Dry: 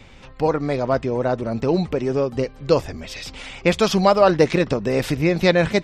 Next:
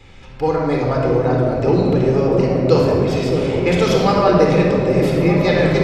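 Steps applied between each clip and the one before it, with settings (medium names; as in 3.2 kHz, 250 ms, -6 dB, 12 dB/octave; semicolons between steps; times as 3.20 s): gain riding within 4 dB 2 s; on a send: delay with an opening low-pass 613 ms, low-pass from 400 Hz, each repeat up 1 oct, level -3 dB; on the sum: simulated room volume 3400 m³, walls mixed, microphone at 4 m; trim -4.5 dB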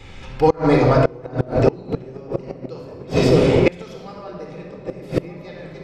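inverted gate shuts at -7 dBFS, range -25 dB; trim +4 dB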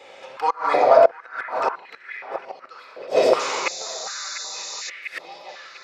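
painted sound noise, 3.39–4.90 s, 3.5–7.4 kHz -31 dBFS; repeats whose band climbs or falls 697 ms, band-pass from 1.4 kHz, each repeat 0.7 oct, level -8 dB; step-sequenced high-pass 2.7 Hz 580–1800 Hz; trim -3 dB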